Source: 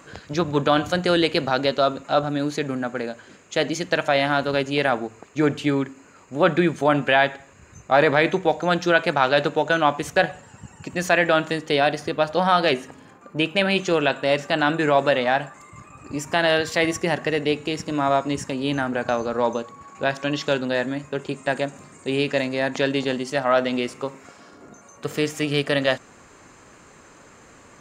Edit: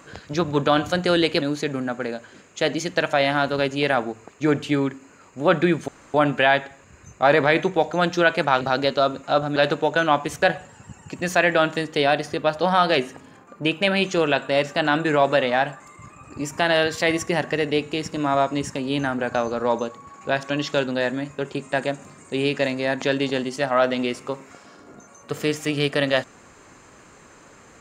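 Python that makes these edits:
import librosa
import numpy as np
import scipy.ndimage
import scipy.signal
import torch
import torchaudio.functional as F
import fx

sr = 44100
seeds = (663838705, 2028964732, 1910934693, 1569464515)

y = fx.edit(x, sr, fx.move(start_s=1.42, length_s=0.95, to_s=9.3),
    fx.insert_room_tone(at_s=6.83, length_s=0.26), tone=tone)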